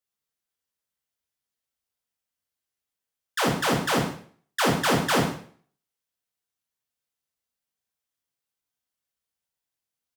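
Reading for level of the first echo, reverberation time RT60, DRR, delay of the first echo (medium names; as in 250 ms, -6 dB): -13.5 dB, 0.50 s, -1.0 dB, 121 ms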